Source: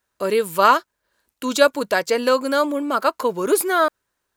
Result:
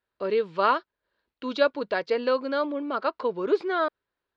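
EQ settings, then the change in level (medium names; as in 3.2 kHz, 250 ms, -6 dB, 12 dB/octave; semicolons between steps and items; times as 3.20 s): steep low-pass 4.5 kHz 36 dB/octave; peaking EQ 420 Hz +4 dB 0.82 oct; -8.5 dB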